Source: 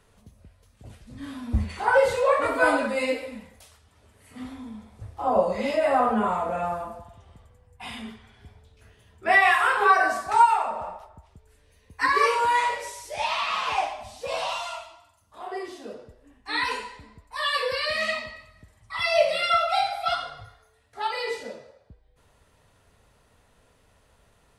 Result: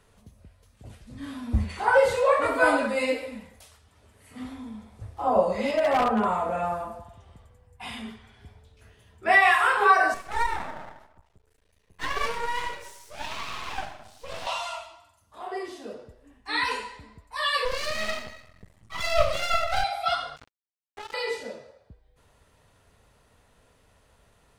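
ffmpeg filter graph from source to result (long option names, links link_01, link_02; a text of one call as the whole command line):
ffmpeg -i in.wav -filter_complex "[0:a]asettb=1/sr,asplit=3[link_01][link_02][link_03];[link_01]atrim=end=5.714[link_04];[link_02]atrim=start=5.71:end=6.25,asetpts=PTS-STARTPTS,afade=type=in:duration=0.004:curve=qsin,afade=type=out:start_time=0.536:duration=0.004:curve=qsin,highshelf=frequency=7200:gain=-8,aeval=exprs='0.158*(abs(mod(val(0)/0.158+3,4)-2)-1)':channel_layout=same[link_05];[link_03]atrim=start=6.246[link_06];[link_04][link_05]acrossfade=duration=0.004:curve1=hsin:curve2=qsin[link_07];[link_07][link_06]acrossfade=duration=0.004:curve1=qsin:curve2=hsin,asettb=1/sr,asplit=3[link_08][link_09][link_10];[link_08]atrim=end=10.144[link_11];[link_09]atrim=start=10.14:end=14.47,asetpts=PTS-STARTPTS,afade=type=in:duration=0.004:curve=qsin,afade=type=out:start_time=4.326:duration=0.004:curve=qsin,flanger=delay=3.4:depth=5.9:regen=-46:speed=1.9:shape=sinusoidal,aeval=exprs='max(val(0),0)':channel_layout=same[link_12];[link_10]atrim=start=14.466[link_13];[link_11][link_12]acrossfade=duration=0.004:curve1=hsin:curve2=qsin[link_14];[link_14][link_13]acrossfade=duration=0.004:curve1=qsin:curve2=hsin,asettb=1/sr,asplit=3[link_15][link_16][link_17];[link_15]atrim=end=17.654[link_18];[link_16]atrim=start=17.65:end=19.84,asetpts=PTS-STARTPTS,afade=type=in:duration=0.004:curve=qsin,afade=type=out:start_time=2.186:duration=0.004:curve=qsin,equalizer=frequency=190:width_type=o:width=2.9:gain=7,aeval=exprs='max(val(0),0)':channel_layout=same[link_19];[link_17]atrim=start=19.836[link_20];[link_18][link_19]acrossfade=duration=0.004:curve1=hsin:curve2=qsin[link_21];[link_21][link_20]acrossfade=duration=0.004:curve1=qsin:curve2=hsin,asettb=1/sr,asplit=3[link_22][link_23][link_24];[link_22]atrim=end=20.364[link_25];[link_23]atrim=start=20.36:end=21.14,asetpts=PTS-STARTPTS,afade=type=in:duration=0.004:curve=qsin,afade=type=out:start_time=0.776:duration=0.004:curve=qsin,aecho=1:1:4.9:0.35,atrim=end_sample=34398,acompressor=threshold=-36dB:ratio=16:attack=3.2:release=140:knee=1:detection=peak,acrusher=bits=5:mix=0:aa=0.5[link_26];[link_24]atrim=start=21.136[link_27];[link_25][link_26]acrossfade=duration=0.004:curve1=hsin:curve2=qsin[link_28];[link_28][link_27]acrossfade=duration=0.004:curve1=qsin:curve2=hsin" out.wav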